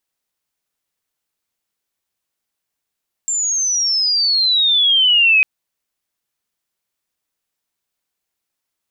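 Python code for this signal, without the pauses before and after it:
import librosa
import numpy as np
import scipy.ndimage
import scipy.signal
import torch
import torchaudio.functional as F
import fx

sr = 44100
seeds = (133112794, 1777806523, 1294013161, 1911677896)

y = fx.chirp(sr, length_s=2.15, from_hz=7400.0, to_hz=2500.0, law='logarithmic', from_db=-16.5, to_db=-8.5)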